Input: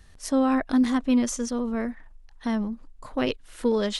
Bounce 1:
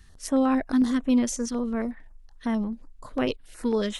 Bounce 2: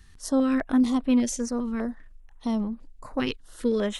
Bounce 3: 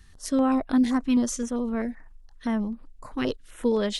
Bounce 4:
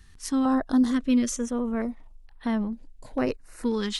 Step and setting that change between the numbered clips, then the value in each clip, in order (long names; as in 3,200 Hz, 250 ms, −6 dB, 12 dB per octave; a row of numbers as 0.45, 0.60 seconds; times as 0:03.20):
notch on a step sequencer, speed: 11, 5, 7.7, 2.2 Hertz